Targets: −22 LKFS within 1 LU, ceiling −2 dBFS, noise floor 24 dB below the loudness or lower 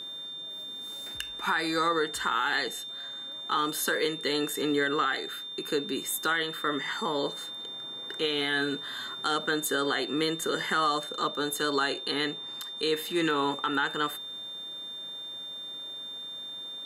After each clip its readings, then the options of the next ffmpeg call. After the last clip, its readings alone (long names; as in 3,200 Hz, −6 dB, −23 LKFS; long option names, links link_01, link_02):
interfering tone 3,600 Hz; level of the tone −37 dBFS; integrated loudness −30.0 LKFS; sample peak −14.5 dBFS; target loudness −22.0 LKFS
→ -af "bandreject=frequency=3600:width=30"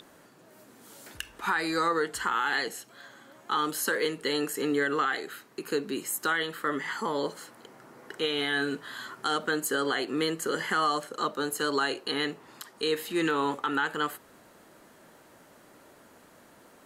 interfering tone none found; integrated loudness −29.5 LKFS; sample peak −15.0 dBFS; target loudness −22.0 LKFS
→ -af "volume=7.5dB"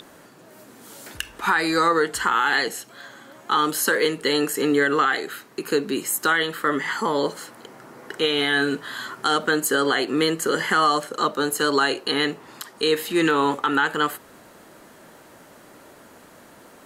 integrated loudness −22.0 LKFS; sample peak −7.5 dBFS; background noise floor −49 dBFS